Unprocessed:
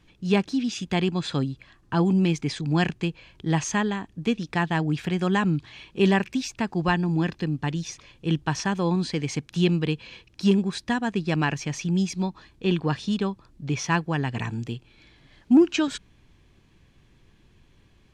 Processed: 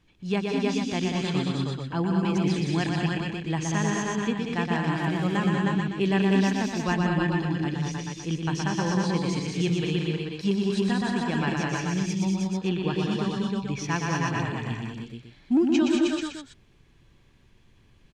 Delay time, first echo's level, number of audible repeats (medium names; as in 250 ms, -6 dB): 120 ms, -4.5 dB, 7